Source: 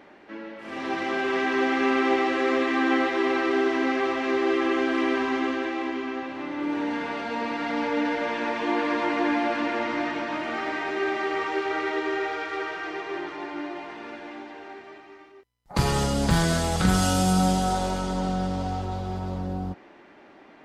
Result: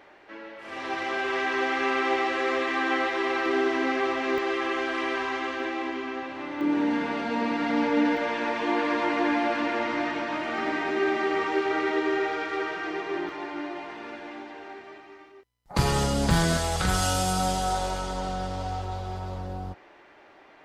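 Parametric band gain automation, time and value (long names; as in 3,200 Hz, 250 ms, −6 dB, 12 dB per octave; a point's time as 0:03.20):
parametric band 220 Hz 1.2 octaves
−11.5 dB
from 0:03.46 −4 dB
from 0:04.38 −14.5 dB
from 0:05.60 −5 dB
from 0:06.61 +5.5 dB
from 0:08.17 −1.5 dB
from 0:10.58 +6 dB
from 0:13.29 −1.5 dB
from 0:16.57 −11.5 dB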